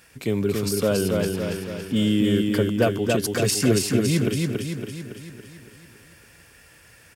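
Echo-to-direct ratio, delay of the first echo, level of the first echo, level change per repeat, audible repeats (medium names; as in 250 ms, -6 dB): -1.5 dB, 280 ms, -3.0 dB, -5.0 dB, 7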